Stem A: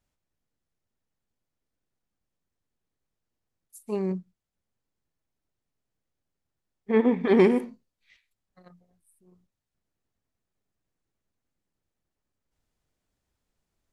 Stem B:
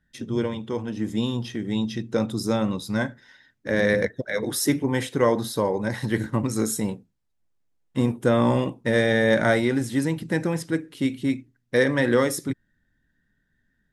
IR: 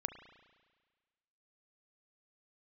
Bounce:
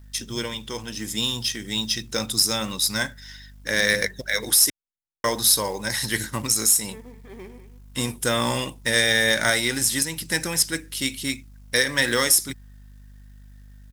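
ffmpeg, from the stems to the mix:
-filter_complex "[0:a]volume=-17.5dB,asplit=2[a][b];[b]volume=-13dB[c];[1:a]equalizer=f=5.2k:t=o:w=0.26:g=5,crystalizer=i=8:c=0,aeval=exprs='val(0)+0.00891*(sin(2*PI*50*n/s)+sin(2*PI*2*50*n/s)/2+sin(2*PI*3*50*n/s)/3+sin(2*PI*4*50*n/s)/4+sin(2*PI*5*50*n/s)/5)':c=same,volume=-1dB,asplit=3[d][e][f];[d]atrim=end=4.7,asetpts=PTS-STARTPTS,afade=t=out:st=4.696:d=0.004:c=hsin[g];[e]atrim=start=4.7:end=5.24,asetpts=PTS-STARTPTS,volume=0[h];[f]atrim=start=5.24,asetpts=PTS-STARTPTS,afade=t=in:d=0.004:c=hsin[i];[g][h][i]concat=n=3:v=0:a=1[j];[c]aecho=0:1:197:1[k];[a][j][k]amix=inputs=3:normalize=0,equalizer=f=270:w=0.31:g=-6.5,acrusher=bits=5:mode=log:mix=0:aa=0.000001,alimiter=limit=-6dB:level=0:latency=1:release=184"

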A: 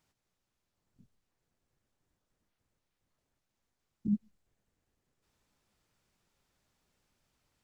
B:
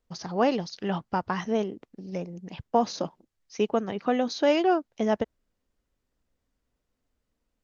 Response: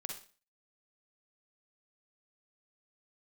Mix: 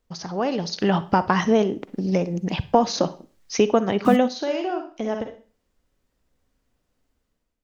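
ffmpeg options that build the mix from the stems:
-filter_complex "[0:a]highpass=f=320:p=1,acrusher=bits=8:mix=0:aa=0.000001,volume=1dB,asplit=3[a][b][c];[b]volume=-18dB[d];[1:a]acompressor=threshold=-37dB:ratio=2,volume=2.5dB,asplit=2[e][f];[f]volume=-7.5dB[g];[c]apad=whole_len=336500[h];[e][h]sidechaingate=range=-21dB:threshold=-46dB:ratio=16:detection=peak[i];[2:a]atrim=start_sample=2205[j];[d][g]amix=inputs=2:normalize=0[k];[k][j]afir=irnorm=-1:irlink=0[l];[a][i][l]amix=inputs=3:normalize=0,dynaudnorm=f=250:g=5:m=12dB"

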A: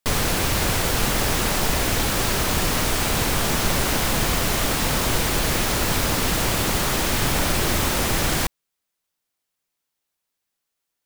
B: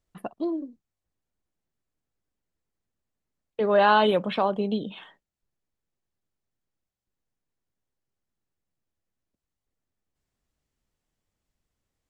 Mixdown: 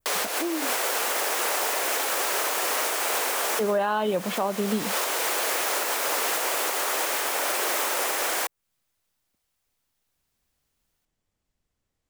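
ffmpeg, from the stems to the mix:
-filter_complex "[0:a]highpass=f=440:w=0.5412,highpass=f=440:w=1.3066,volume=2.5dB[a];[1:a]volume=1.5dB,asplit=2[b][c];[c]apad=whole_len=487332[d];[a][d]sidechaincompress=threshold=-34dB:ratio=8:attack=30:release=246[e];[e][b]amix=inputs=2:normalize=0,adynamicequalizer=threshold=0.0141:dfrequency=4000:dqfactor=1.1:tfrequency=4000:tqfactor=1.1:attack=5:release=100:ratio=0.375:range=2.5:mode=cutabove:tftype=bell,alimiter=limit=-15.5dB:level=0:latency=1:release=293"

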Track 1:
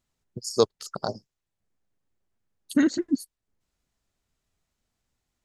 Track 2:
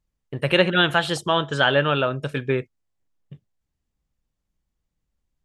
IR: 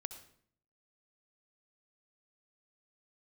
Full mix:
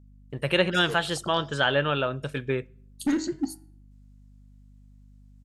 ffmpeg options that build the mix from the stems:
-filter_complex "[0:a]asoftclip=type=hard:threshold=-16.5dB,flanger=delay=7.8:depth=6.1:regen=-74:speed=0.57:shape=sinusoidal,bandreject=f=105.7:t=h:w=4,bandreject=f=211.4:t=h:w=4,bandreject=f=317.1:t=h:w=4,bandreject=f=422.8:t=h:w=4,bandreject=f=528.5:t=h:w=4,bandreject=f=634.2:t=h:w=4,bandreject=f=739.9:t=h:w=4,bandreject=f=845.6:t=h:w=4,bandreject=f=951.3:t=h:w=4,bandreject=f=1.057k:t=h:w=4,bandreject=f=1.1627k:t=h:w=4,bandreject=f=1.2684k:t=h:w=4,bandreject=f=1.3741k:t=h:w=4,bandreject=f=1.4798k:t=h:w=4,bandreject=f=1.5855k:t=h:w=4,bandreject=f=1.6912k:t=h:w=4,bandreject=f=1.7969k:t=h:w=4,bandreject=f=1.9026k:t=h:w=4,bandreject=f=2.0083k:t=h:w=4,bandreject=f=2.114k:t=h:w=4,bandreject=f=2.2197k:t=h:w=4,bandreject=f=2.3254k:t=h:w=4,bandreject=f=2.4311k:t=h:w=4,bandreject=f=2.5368k:t=h:w=4,bandreject=f=2.6425k:t=h:w=4,bandreject=f=2.7482k:t=h:w=4,bandreject=f=2.8539k:t=h:w=4,bandreject=f=2.9596k:t=h:w=4,bandreject=f=3.0653k:t=h:w=4,bandreject=f=3.171k:t=h:w=4,adelay=300,volume=0.5dB,asplit=2[a][b];[b]volume=-15.5dB[c];[1:a]volume=-5.5dB,asplit=3[d][e][f];[e]volume=-18.5dB[g];[f]apad=whole_len=253284[h];[a][h]sidechaincompress=threshold=-34dB:ratio=8:attack=5.9:release=266[i];[2:a]atrim=start_sample=2205[j];[c][g]amix=inputs=2:normalize=0[k];[k][j]afir=irnorm=-1:irlink=0[l];[i][d][l]amix=inputs=3:normalize=0,equalizer=f=9.2k:w=0.76:g=4,aeval=exprs='val(0)+0.00282*(sin(2*PI*50*n/s)+sin(2*PI*2*50*n/s)/2+sin(2*PI*3*50*n/s)/3+sin(2*PI*4*50*n/s)/4+sin(2*PI*5*50*n/s)/5)':c=same"

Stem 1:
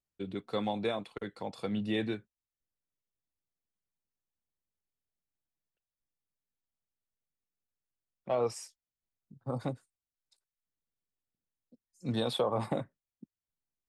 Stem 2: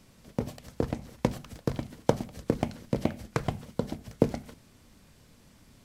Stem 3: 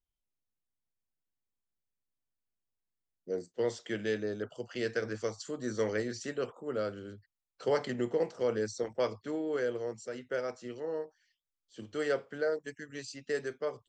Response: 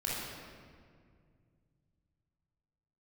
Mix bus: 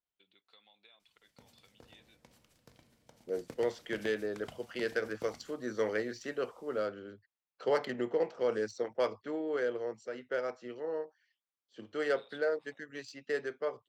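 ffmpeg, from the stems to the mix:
-filter_complex "[0:a]acompressor=threshold=-38dB:ratio=6,bandpass=f=3.3k:t=q:w=1.5:csg=0,volume=-9dB[a];[1:a]tiltshelf=f=970:g=-8,alimiter=limit=-15.5dB:level=0:latency=1:release=148,adelay=1000,volume=-15dB,asplit=2[b][c];[c]volume=-21dB[d];[2:a]highpass=f=390:p=1,adynamicsmooth=sensitivity=5.5:basefreq=3.4k,volume=2dB,asplit=2[e][f];[f]apad=whole_len=301989[g];[b][g]sidechaingate=range=-11dB:threshold=-53dB:ratio=16:detection=peak[h];[3:a]atrim=start_sample=2205[i];[d][i]afir=irnorm=-1:irlink=0[j];[a][h][e][j]amix=inputs=4:normalize=0"

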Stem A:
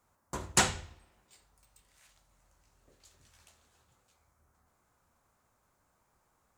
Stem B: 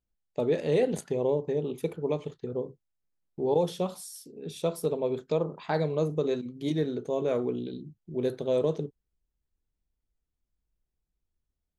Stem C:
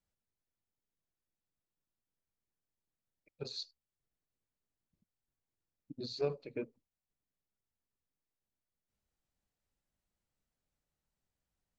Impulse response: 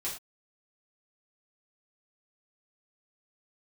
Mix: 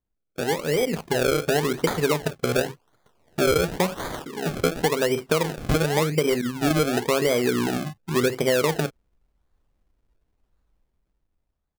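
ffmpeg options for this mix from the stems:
-filter_complex "[0:a]highpass=f=340:w=0.5412,highpass=f=340:w=1.3066,adelay=1300,volume=3dB[a];[1:a]dynaudnorm=f=390:g=7:m=12dB,volume=1.5dB[b];[2:a]adelay=450,volume=-9.5dB[c];[a][b][c]amix=inputs=3:normalize=0,acrusher=samples=32:mix=1:aa=0.000001:lfo=1:lforange=32:lforate=0.92,acompressor=threshold=-18dB:ratio=6"

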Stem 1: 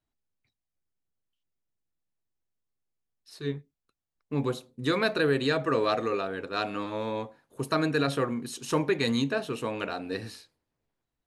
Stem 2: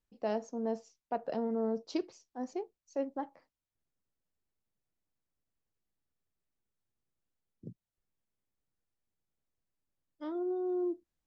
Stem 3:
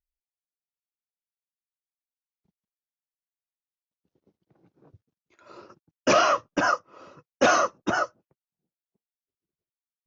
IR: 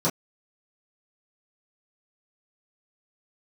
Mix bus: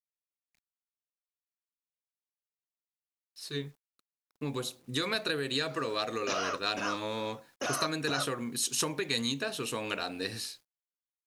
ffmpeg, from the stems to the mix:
-filter_complex "[0:a]acompressor=threshold=-28dB:ratio=6,adynamicequalizer=threshold=0.00316:dfrequency=3100:dqfactor=0.7:tfrequency=3100:tqfactor=0.7:attack=5:release=100:ratio=0.375:range=2:mode=boostabove:tftype=highshelf,adelay=100,volume=-3dB[a];[2:a]alimiter=limit=-20dB:level=0:latency=1:release=160,adelay=200,volume=-8.5dB[b];[a][b]amix=inputs=2:normalize=0,highshelf=f=2.1k:g=9.5,acrusher=bits=10:mix=0:aa=0.000001"

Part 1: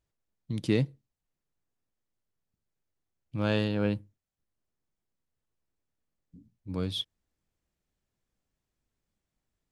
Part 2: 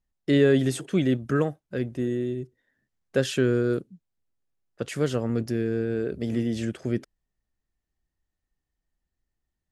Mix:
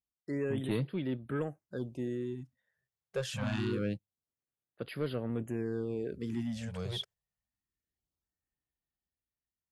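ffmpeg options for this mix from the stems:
-filter_complex "[0:a]volume=-4.5dB[a];[1:a]dynaudnorm=f=190:g=11:m=7dB,volume=-14.5dB,asplit=2[b][c];[c]apad=whole_len=428223[d];[a][d]sidechaingate=range=-33dB:threshold=-52dB:ratio=16:detection=peak[e];[e][b]amix=inputs=2:normalize=0,highpass=64,asoftclip=type=tanh:threshold=-24dB,afftfilt=real='re*(1-between(b*sr/1024,250*pow(7200/250,0.5+0.5*sin(2*PI*0.25*pts/sr))/1.41,250*pow(7200/250,0.5+0.5*sin(2*PI*0.25*pts/sr))*1.41))':imag='im*(1-between(b*sr/1024,250*pow(7200/250,0.5+0.5*sin(2*PI*0.25*pts/sr))/1.41,250*pow(7200/250,0.5+0.5*sin(2*PI*0.25*pts/sr))*1.41))':win_size=1024:overlap=0.75"

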